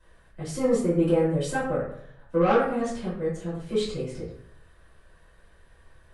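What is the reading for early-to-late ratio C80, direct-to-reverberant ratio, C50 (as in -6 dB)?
6.0 dB, -12.5 dB, 2.0 dB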